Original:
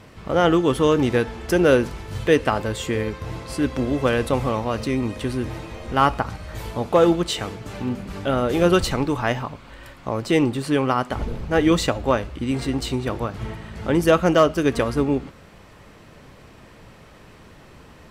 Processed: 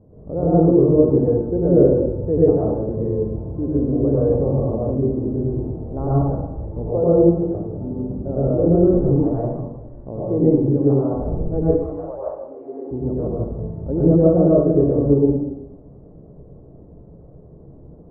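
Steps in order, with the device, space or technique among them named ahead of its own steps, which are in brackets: 11.62–12.90 s: high-pass 940 Hz -> 330 Hz 24 dB/octave; next room (low-pass 580 Hz 24 dB/octave; reverberation RT60 1.0 s, pre-delay 86 ms, DRR -8 dB); trim -4 dB

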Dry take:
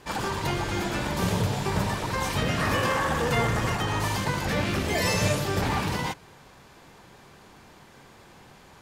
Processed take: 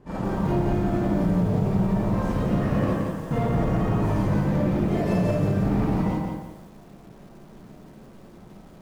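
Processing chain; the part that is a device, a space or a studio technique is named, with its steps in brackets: 2.88–3.31 s: pre-emphasis filter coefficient 0.8; FFT filter 110 Hz 0 dB, 180 Hz +6 dB, 3.8 kHz -22 dB; algorithmic reverb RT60 0.48 s, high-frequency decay 0.4×, pre-delay 5 ms, DRR -5 dB; limiter into clipper (peak limiter -15.5 dBFS, peak gain reduction 7 dB; hard clipper -18.5 dBFS, distortion -20 dB); bit-crushed delay 171 ms, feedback 35%, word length 9-bit, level -4 dB

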